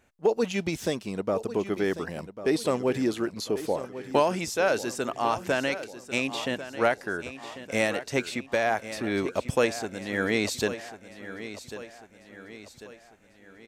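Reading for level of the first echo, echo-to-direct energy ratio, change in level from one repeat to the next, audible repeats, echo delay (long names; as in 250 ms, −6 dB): −13.0 dB, −12.0 dB, −6.5 dB, 4, 1,095 ms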